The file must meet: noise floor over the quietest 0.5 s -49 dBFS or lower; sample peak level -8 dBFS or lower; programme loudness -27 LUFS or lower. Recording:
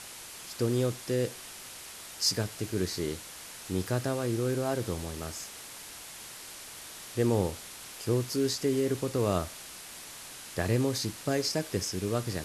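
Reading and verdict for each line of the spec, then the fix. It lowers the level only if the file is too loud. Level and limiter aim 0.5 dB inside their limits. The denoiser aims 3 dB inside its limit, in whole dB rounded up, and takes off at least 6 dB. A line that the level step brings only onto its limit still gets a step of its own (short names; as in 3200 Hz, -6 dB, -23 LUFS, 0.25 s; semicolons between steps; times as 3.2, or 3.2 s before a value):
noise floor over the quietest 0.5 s -45 dBFS: fail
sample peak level -13.0 dBFS: OK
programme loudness -31.0 LUFS: OK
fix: denoiser 7 dB, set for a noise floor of -45 dBFS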